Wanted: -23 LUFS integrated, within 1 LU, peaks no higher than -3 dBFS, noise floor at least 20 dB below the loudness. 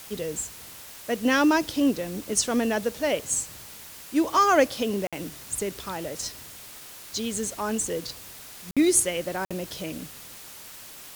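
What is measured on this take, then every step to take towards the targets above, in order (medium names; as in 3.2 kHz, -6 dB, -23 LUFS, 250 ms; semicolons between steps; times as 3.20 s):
dropouts 3; longest dropout 56 ms; noise floor -44 dBFS; noise floor target -46 dBFS; loudness -26.0 LUFS; peak level -7.0 dBFS; loudness target -23.0 LUFS
-> interpolate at 5.07/8.71/9.45 s, 56 ms; noise reduction 6 dB, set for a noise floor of -44 dBFS; trim +3 dB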